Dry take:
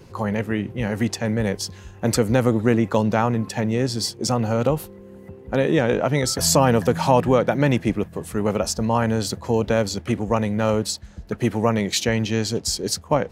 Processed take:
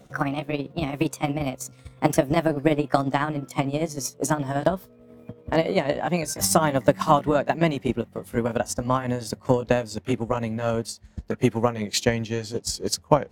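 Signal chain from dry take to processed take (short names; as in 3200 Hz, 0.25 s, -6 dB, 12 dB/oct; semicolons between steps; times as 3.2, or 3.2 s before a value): gliding pitch shift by +5.5 st ending unshifted; transient shaper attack +9 dB, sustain -5 dB; gain -5 dB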